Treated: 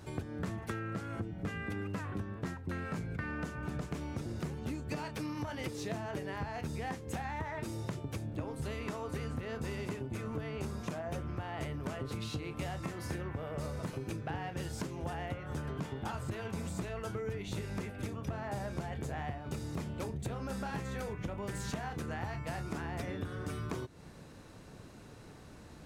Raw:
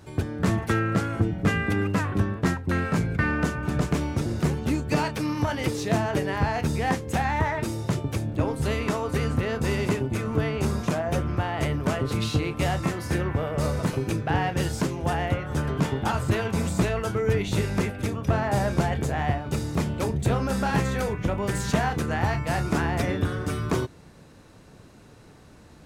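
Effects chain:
downward compressor, threshold −34 dBFS, peak gain reduction 16 dB
level −2 dB

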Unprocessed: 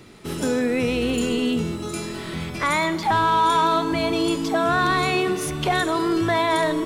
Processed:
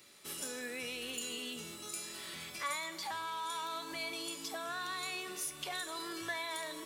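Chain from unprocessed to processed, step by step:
spectral tilt +4 dB per octave
downward compressor 2 to 1, threshold −26 dBFS, peak gain reduction 7 dB
tuned comb filter 570 Hz, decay 0.29 s, harmonics all, mix 80%
level −2 dB

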